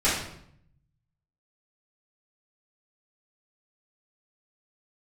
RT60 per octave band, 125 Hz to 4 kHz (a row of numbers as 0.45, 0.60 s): 1.4, 0.90, 0.70, 0.65, 0.60, 0.55 s